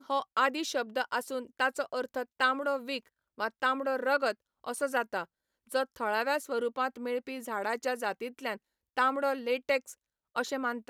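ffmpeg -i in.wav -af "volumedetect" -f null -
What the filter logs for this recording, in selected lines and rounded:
mean_volume: -32.6 dB
max_volume: -14.4 dB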